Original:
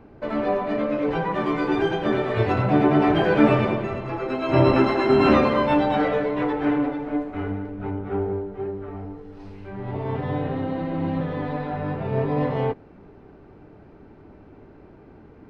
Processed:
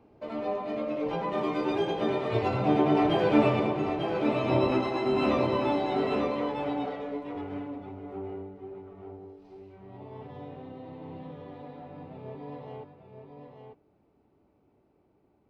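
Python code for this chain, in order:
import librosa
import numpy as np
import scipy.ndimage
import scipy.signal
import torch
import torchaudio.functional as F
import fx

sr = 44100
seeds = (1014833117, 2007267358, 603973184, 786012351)

p1 = fx.doppler_pass(x, sr, speed_mps=7, closest_m=7.1, pass_at_s=3.41)
p2 = fx.low_shelf(p1, sr, hz=320.0, db=-6.5)
p3 = p2 + fx.echo_single(p2, sr, ms=894, db=-6.5, dry=0)
p4 = fx.rider(p3, sr, range_db=4, speed_s=2.0)
p5 = scipy.signal.sosfilt(scipy.signal.butter(2, 41.0, 'highpass', fs=sr, output='sos'), p4)
y = fx.peak_eq(p5, sr, hz=1600.0, db=-10.0, octaves=0.66)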